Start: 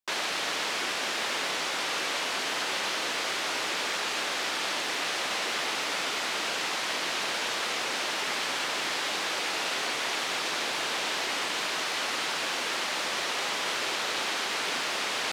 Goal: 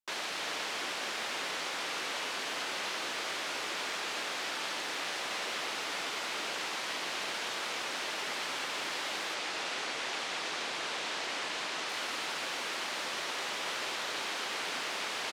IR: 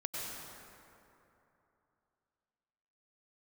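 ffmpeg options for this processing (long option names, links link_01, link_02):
-filter_complex "[0:a]asettb=1/sr,asplit=3[link_01][link_02][link_03];[link_01]atrim=end=9.344[link_04];[link_02]atrim=start=9.34:end=11.89,asetpts=PTS-STARTPTS,afade=type=in:duration=0.004:curve=qsin,afade=type=out:start_time=2.546:duration=0.004:curve=qsin,lowpass=9300[link_05];[link_03]atrim=start=11.886[link_06];[link_04][link_05]acrossfade=duration=0.004:curve1=hsin:curve2=qsin[link_07];[link_07][link_06]acrossfade=duration=0.004:curve1=qsin:curve2=hsin,asplit=2[link_08][link_09];[link_09]adelay=320,highpass=300,lowpass=3400,asoftclip=type=hard:threshold=-25dB,volume=-6dB[link_10];[link_08][link_10]amix=inputs=2:normalize=0,volume=-6.5dB"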